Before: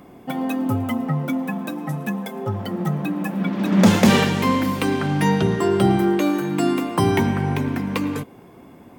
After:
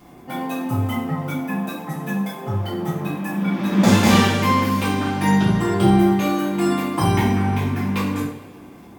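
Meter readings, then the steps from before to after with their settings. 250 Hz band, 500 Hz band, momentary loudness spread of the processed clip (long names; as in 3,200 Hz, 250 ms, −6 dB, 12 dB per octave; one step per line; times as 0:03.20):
+0.5 dB, −1.5 dB, 11 LU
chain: surface crackle 34 per second −38 dBFS
coupled-rooms reverb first 0.47 s, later 2.4 s, from −20 dB, DRR −9 dB
level −8 dB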